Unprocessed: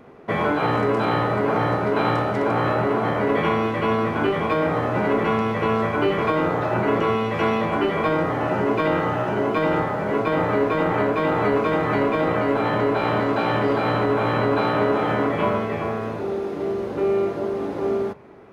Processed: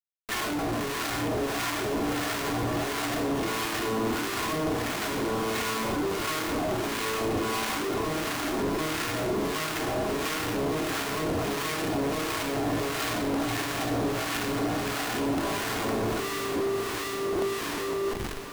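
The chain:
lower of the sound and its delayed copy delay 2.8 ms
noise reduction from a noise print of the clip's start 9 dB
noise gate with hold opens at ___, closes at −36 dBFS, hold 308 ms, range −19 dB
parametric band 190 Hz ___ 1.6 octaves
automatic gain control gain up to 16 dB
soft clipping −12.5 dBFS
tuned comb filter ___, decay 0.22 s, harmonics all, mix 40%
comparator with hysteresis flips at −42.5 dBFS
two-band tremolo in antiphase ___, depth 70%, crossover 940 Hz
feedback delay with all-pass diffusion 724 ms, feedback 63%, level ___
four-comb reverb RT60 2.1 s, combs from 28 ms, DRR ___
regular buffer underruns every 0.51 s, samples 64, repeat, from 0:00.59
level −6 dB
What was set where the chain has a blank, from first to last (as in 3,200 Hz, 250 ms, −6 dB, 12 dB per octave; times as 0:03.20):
−27 dBFS, +8 dB, 92 Hz, 1.5 Hz, −10 dB, 15 dB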